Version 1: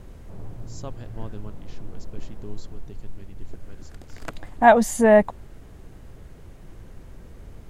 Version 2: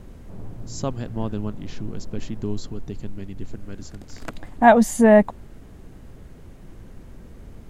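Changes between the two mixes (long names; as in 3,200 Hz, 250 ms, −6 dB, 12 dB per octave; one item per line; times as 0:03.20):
speech +9.0 dB
master: add parametric band 230 Hz +5 dB 0.95 octaves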